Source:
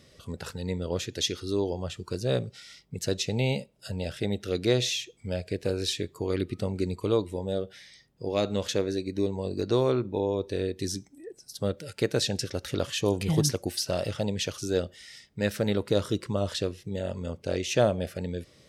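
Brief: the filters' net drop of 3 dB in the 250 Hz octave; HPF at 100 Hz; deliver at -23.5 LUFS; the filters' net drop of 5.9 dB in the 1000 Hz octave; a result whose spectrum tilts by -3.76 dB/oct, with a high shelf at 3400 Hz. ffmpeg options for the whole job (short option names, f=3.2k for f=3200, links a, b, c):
-af "highpass=100,equalizer=f=250:t=o:g=-3.5,equalizer=f=1k:t=o:g=-9,highshelf=f=3.4k:g=5,volume=7dB"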